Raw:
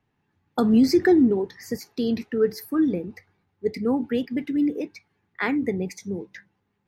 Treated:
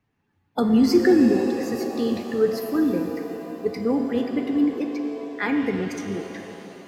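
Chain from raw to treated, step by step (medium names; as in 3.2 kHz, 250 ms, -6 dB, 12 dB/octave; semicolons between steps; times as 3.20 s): coarse spectral quantiser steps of 15 dB; pitch-shifted reverb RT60 3.5 s, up +7 st, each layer -8 dB, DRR 4.5 dB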